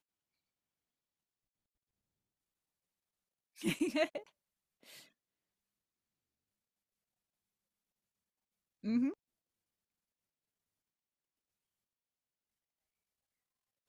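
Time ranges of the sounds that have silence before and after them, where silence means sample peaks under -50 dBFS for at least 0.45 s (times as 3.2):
3.58–4.27
4.88–5.03
8.84–9.14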